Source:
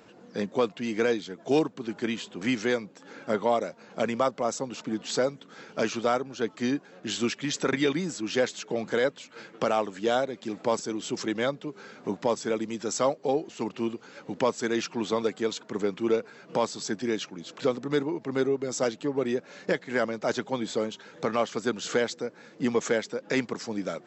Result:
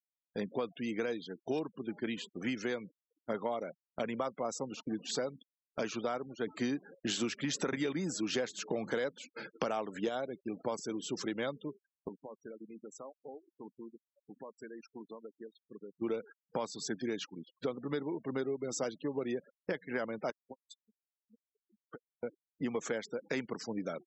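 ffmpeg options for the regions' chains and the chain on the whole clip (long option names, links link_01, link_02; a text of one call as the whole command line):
ffmpeg -i in.wav -filter_complex "[0:a]asettb=1/sr,asplit=3[link_01][link_02][link_03];[link_01]atrim=end=6.474[link_04];[link_02]atrim=start=6.47:end=10.09,asetpts=PTS-STARTPTS,afade=type=in:duration=0.004:curve=qsin,afade=type=out:start_time=3.616:duration=0.004:curve=qsin,adynamicequalizer=threshold=0.00631:dfrequency=3400:dqfactor=1.2:tfrequency=3400:tqfactor=1.2:attack=5:release=100:ratio=0.375:range=2:mode=cutabove:tftype=bell,acontrast=44,bandreject=frequency=50:width_type=h:width=6,bandreject=frequency=100:width_type=h:width=6[link_05];[link_03]atrim=start=10.086[link_06];[link_04][link_05]acrossfade=duration=0.004:curve1=hsin:curve2=qsin[link_07];[link_07][link_06]acrossfade=duration=0.004:curve1=qsin:curve2=hsin,asettb=1/sr,asplit=3[link_08][link_09][link_10];[link_08]atrim=end=12.084[link_11];[link_09]atrim=start=12.08:end=16.02,asetpts=PTS-STARTPTS,afade=type=in:duration=0.004:curve=qsin,afade=type=out:start_time=3.936:duration=0.004:curve=qsin,equalizer=frequency=5000:width=0.65:gain=-2,bandreject=frequency=60:width_type=h:width=6,bandreject=frequency=120:width_type=h:width=6,bandreject=frequency=180:width_type=h:width=6,bandreject=frequency=240:width_type=h:width=6,acompressor=threshold=-36dB:ratio=16:attack=3.2:release=140:knee=1:detection=peak[link_12];[link_10]atrim=start=16.016[link_13];[link_11][link_12]acrossfade=duration=0.004:curve1=hsin:curve2=qsin[link_14];[link_14][link_13]acrossfade=duration=0.004:curve1=qsin:curve2=hsin,asettb=1/sr,asplit=3[link_15][link_16][link_17];[link_15]atrim=end=20.304[link_18];[link_16]atrim=start=20.3:end=22.23,asetpts=PTS-STARTPTS,afade=type=in:duration=0.004:curve=qsin,afade=type=out:start_time=1.926:duration=0.004:curve=qsin,acompressor=threshold=-34dB:ratio=10:attack=3.2:release=140:knee=1:detection=peak,aeval=exprs='(mod(21.1*val(0)+1,2)-1)/21.1':channel_layout=same,aeval=exprs='val(0)*pow(10,-37*(0.5-0.5*cos(2*PI*4.9*n/s))/20)':channel_layout=same[link_19];[link_17]atrim=start=22.226[link_20];[link_18][link_19]acrossfade=duration=0.004:curve1=hsin:curve2=qsin[link_21];[link_21][link_20]acrossfade=duration=0.004:curve1=qsin:curve2=hsin,agate=range=-13dB:threshold=-40dB:ratio=16:detection=peak,afftfilt=real='re*gte(hypot(re,im),0.0112)':imag='im*gte(hypot(re,im),0.0112)':win_size=1024:overlap=0.75,acompressor=threshold=-26dB:ratio=6,volume=-5dB" out.wav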